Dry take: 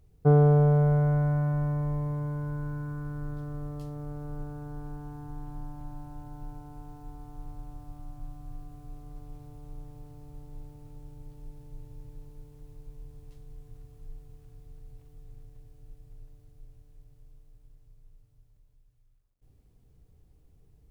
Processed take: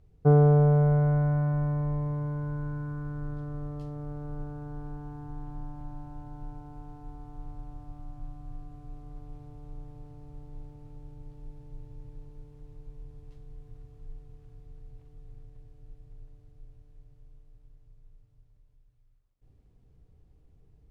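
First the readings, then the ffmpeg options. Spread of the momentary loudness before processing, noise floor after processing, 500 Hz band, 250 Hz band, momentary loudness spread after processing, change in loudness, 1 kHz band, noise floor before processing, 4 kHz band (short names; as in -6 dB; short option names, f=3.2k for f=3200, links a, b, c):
25 LU, -61 dBFS, +0.5 dB, +0.5 dB, 25 LU, +0.5 dB, 0.0 dB, -62 dBFS, n/a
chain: -af "aemphasis=mode=reproduction:type=50fm"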